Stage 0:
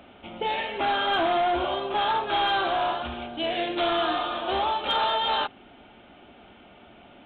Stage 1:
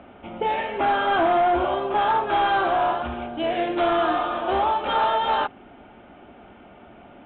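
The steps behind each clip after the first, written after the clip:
low-pass filter 1,900 Hz 12 dB per octave
level +4.5 dB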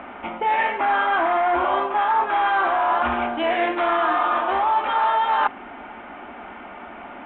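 octave-band graphic EQ 125/250/1,000/2,000 Hz −9/+5/+11/+11 dB
reversed playback
downward compressor, threshold −20 dBFS, peak gain reduction 13 dB
reversed playback
level +2 dB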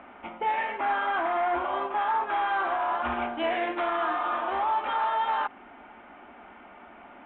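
brickwall limiter −14.5 dBFS, peak gain reduction 7 dB
expander for the loud parts 1.5 to 1, over −33 dBFS
level −4 dB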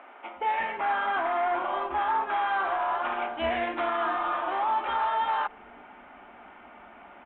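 multiband delay without the direct sound highs, lows 360 ms, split 310 Hz

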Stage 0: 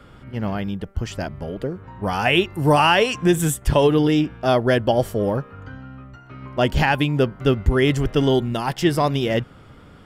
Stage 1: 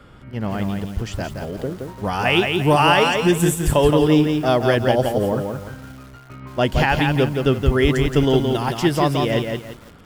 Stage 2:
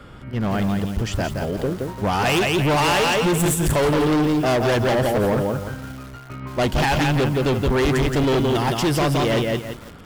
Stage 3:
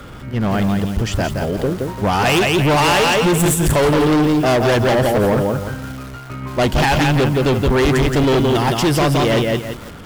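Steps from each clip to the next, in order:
feedback echo at a low word length 171 ms, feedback 35%, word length 7 bits, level −4.5 dB
hard clipping −20.5 dBFS, distortion −6 dB; level +4 dB
converter with a step at zero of −44 dBFS; level +4 dB

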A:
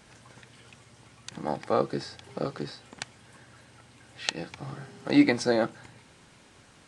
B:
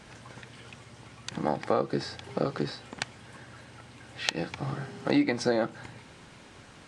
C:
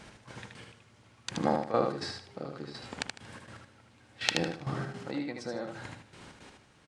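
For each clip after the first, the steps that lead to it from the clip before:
high-shelf EQ 7,300 Hz −9 dB; downward compressor 4 to 1, threshold −28 dBFS, peak gain reduction 12.5 dB; level +5.5 dB
gate pattern "x..xx.x.......xx" 164 BPM −12 dB; on a send: repeating echo 77 ms, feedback 26%, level −4.5 dB

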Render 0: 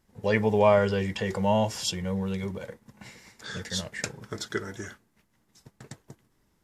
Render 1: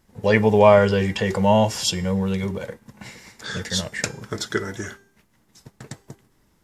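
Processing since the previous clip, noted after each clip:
hum removal 396.2 Hz, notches 33
level +7 dB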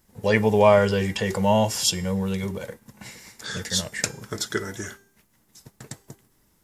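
high-shelf EQ 7,400 Hz +12 dB
level −3 dB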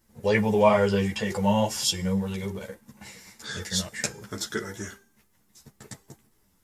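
string-ensemble chorus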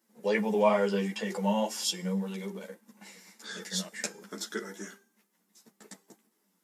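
elliptic high-pass filter 180 Hz
level −4.5 dB

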